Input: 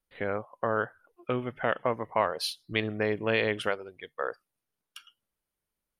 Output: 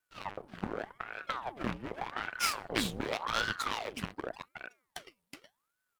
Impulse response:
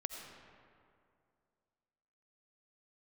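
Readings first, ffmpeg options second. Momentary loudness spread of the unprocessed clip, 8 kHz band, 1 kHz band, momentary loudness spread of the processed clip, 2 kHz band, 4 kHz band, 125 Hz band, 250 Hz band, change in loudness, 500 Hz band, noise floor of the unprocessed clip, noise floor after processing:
10 LU, +6.0 dB, -3.5 dB, 17 LU, -4.0 dB, -0.5 dB, -6.5 dB, -4.5 dB, -5.5 dB, -11.5 dB, under -85 dBFS, -84 dBFS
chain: -filter_complex "[0:a]highpass=f=160:w=0.5412,highpass=f=160:w=1.3066,afreqshift=-500,acrossover=split=2100[a][b];[a]acompressor=threshold=-39dB:ratio=6[c];[c][b]amix=inputs=2:normalize=0,aeval=exprs='max(val(0),0)':c=same,bandreject=f=252.7:t=h:w=4,bandreject=f=505.4:t=h:w=4,bandreject=f=758.1:t=h:w=4,bandreject=f=1.0108k:t=h:w=4,asplit=2[d][e];[e]aecho=0:1:371:0.562[f];[d][f]amix=inputs=2:normalize=0,aeval=exprs='val(0)*sin(2*PI*840*n/s+840*0.8/0.86*sin(2*PI*0.86*n/s))':c=same,volume=8.5dB"

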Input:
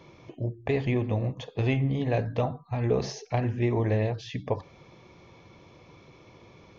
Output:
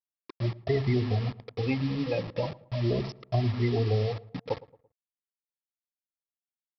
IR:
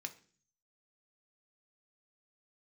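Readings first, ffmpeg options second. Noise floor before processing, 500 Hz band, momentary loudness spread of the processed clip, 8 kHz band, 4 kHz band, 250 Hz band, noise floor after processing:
-54 dBFS, -1.5 dB, 9 LU, n/a, +2.0 dB, -1.0 dB, under -85 dBFS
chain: -filter_complex "[0:a]afftfilt=real='re*pow(10,15/40*sin(2*PI*(1.3*log(max(b,1)*sr/1024/100)/log(2)-(0.39)*(pts-256)/sr)))':imag='im*pow(10,15/40*sin(2*PI*(1.3*log(max(b,1)*sr/1024/100)/log(2)-(0.39)*(pts-256)/sr)))':win_size=1024:overlap=0.75,afftfilt=real='re*gte(hypot(re,im),0.1)':imag='im*gte(hypot(re,im),0.1)':win_size=1024:overlap=0.75,acrossover=split=480|3000[a][b][c];[b]acompressor=threshold=-26dB:ratio=6[d];[a][d][c]amix=inputs=3:normalize=0,aresample=11025,acrusher=bits=5:mix=0:aa=0.000001,aresample=44100,asuperstop=centerf=1500:order=4:qfactor=7.1,asplit=2[e][f];[f]adelay=112,lowpass=f=1.4k:p=1,volume=-19.5dB,asplit=2[g][h];[h]adelay=112,lowpass=f=1.4k:p=1,volume=0.42,asplit=2[i][j];[j]adelay=112,lowpass=f=1.4k:p=1,volume=0.42[k];[e][g][i][k]amix=inputs=4:normalize=0,volume=-3.5dB"

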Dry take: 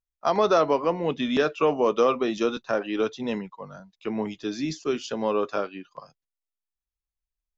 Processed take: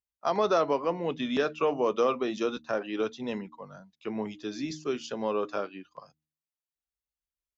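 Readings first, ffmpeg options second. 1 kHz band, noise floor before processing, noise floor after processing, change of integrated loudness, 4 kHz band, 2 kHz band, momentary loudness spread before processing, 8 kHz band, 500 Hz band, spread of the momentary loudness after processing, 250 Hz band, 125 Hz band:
-4.5 dB, under -85 dBFS, under -85 dBFS, -4.5 dB, -4.5 dB, -4.5 dB, 14 LU, n/a, -4.5 dB, 14 LU, -5.0 dB, -5.0 dB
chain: -af "highpass=51,bandreject=f=77.04:t=h:w=4,bandreject=f=154.08:t=h:w=4,bandreject=f=231.12:t=h:w=4,bandreject=f=308.16:t=h:w=4,volume=-4.5dB"

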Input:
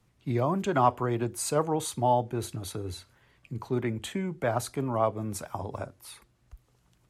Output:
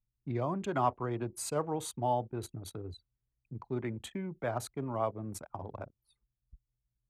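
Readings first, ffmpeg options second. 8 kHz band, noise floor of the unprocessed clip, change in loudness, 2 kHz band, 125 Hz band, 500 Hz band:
-7.0 dB, -67 dBFS, -6.5 dB, -7.0 dB, -6.5 dB, -6.5 dB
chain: -af "anlmdn=1,volume=-6.5dB"

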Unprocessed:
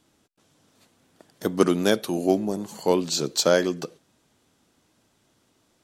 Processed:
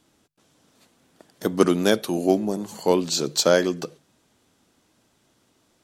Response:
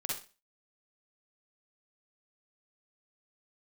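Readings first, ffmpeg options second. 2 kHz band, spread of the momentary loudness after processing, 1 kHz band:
+1.5 dB, 11 LU, +1.5 dB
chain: -af "bandreject=f=50:t=h:w=6,bandreject=f=100:t=h:w=6,bandreject=f=150:t=h:w=6,volume=1.5dB"

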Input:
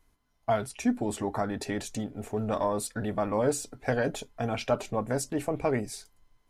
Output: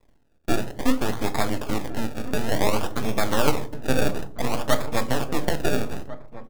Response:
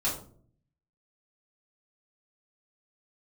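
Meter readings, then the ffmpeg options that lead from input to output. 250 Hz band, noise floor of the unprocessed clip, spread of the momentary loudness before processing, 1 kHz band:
+4.0 dB, -70 dBFS, 7 LU, +4.5 dB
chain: -filter_complex "[0:a]lowshelf=f=100:g=-8,asplit=2[a][b];[b]acompressor=threshold=-38dB:ratio=6,volume=-1dB[c];[a][c]amix=inputs=2:normalize=0,afreqshift=14,acrusher=samples=29:mix=1:aa=0.000001:lfo=1:lforange=29:lforate=0.56,aeval=exprs='max(val(0),0)':c=same,asplit=2[d][e];[e]adelay=1399,volume=-14dB,highshelf=f=4k:g=-31.5[f];[d][f]amix=inputs=2:normalize=0,asplit=2[g][h];[1:a]atrim=start_sample=2205[i];[h][i]afir=irnorm=-1:irlink=0,volume=-16dB[j];[g][j]amix=inputs=2:normalize=0,volume=6dB"

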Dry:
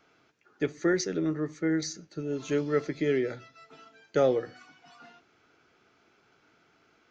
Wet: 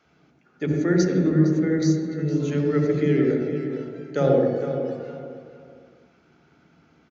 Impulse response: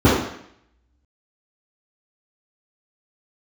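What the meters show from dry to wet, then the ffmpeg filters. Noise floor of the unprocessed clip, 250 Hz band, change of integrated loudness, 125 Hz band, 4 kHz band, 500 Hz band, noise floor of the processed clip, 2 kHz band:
-66 dBFS, +9.5 dB, +7.0 dB, +14.5 dB, +0.5 dB, +6.0 dB, -61 dBFS, +2.0 dB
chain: -filter_complex "[0:a]highpass=64,asplit=2[a][b];[b]adelay=460,lowpass=f=2.6k:p=1,volume=-8.5dB,asplit=2[c][d];[d]adelay=460,lowpass=f=2.6k:p=1,volume=0.29,asplit=2[e][f];[f]adelay=460,lowpass=f=2.6k:p=1,volume=0.29[g];[a][c][e][g]amix=inputs=4:normalize=0,asplit=2[h][i];[1:a]atrim=start_sample=2205,asetrate=27342,aresample=44100,adelay=48[j];[i][j]afir=irnorm=-1:irlink=0,volume=-26.5dB[k];[h][k]amix=inputs=2:normalize=0,aresample=16000,aresample=44100"

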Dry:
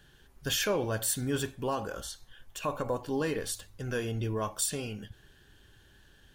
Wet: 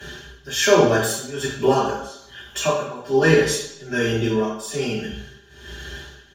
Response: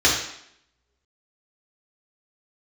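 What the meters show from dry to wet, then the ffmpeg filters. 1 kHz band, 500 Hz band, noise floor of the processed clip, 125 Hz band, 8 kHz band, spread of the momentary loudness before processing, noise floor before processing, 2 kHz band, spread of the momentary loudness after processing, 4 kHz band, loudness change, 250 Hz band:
+12.5 dB, +14.5 dB, -49 dBFS, +9.0 dB, +6.5 dB, 12 LU, -60 dBFS, +14.5 dB, 21 LU, +10.0 dB, +12.0 dB, +12.0 dB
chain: -filter_complex "[0:a]agate=range=-33dB:threshold=-54dB:ratio=3:detection=peak,aecho=1:1:5:1,flanger=delay=4.6:depth=3.1:regen=77:speed=1.6:shape=triangular,acompressor=mode=upward:threshold=-38dB:ratio=2.5,aemphasis=mode=production:type=cd,tremolo=f=1.2:d=0.89,highshelf=f=2.6k:g=-7.5[a];[1:a]atrim=start_sample=2205[b];[a][b]afir=irnorm=-1:irlink=0"

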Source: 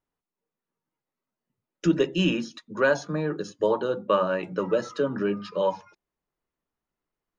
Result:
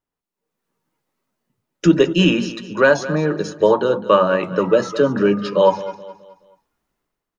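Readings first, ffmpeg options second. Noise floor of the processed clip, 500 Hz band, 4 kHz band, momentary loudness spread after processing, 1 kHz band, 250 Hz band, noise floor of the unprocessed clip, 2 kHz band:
under -85 dBFS, +9.5 dB, +9.0 dB, 7 LU, +9.5 dB, +9.0 dB, under -85 dBFS, +8.5 dB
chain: -af "dynaudnorm=f=110:g=9:m=12.5dB,aecho=1:1:212|424|636|848:0.178|0.0694|0.027|0.0105"

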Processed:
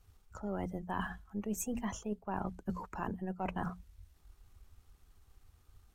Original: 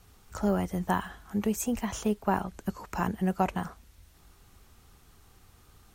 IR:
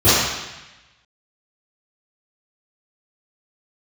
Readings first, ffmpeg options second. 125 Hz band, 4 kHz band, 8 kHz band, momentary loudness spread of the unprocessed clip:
-8.5 dB, -10.0 dB, -6.5 dB, 9 LU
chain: -af "aeval=exprs='if(lt(val(0),0),0.708*val(0),val(0))':c=same,bandreject=f=60:t=h:w=6,bandreject=f=120:t=h:w=6,bandreject=f=180:t=h:w=6,bandreject=f=240:t=h:w=6,afftdn=nr=15:nf=-43,areverse,acompressor=threshold=-37dB:ratio=16,areverse,volume=4dB"

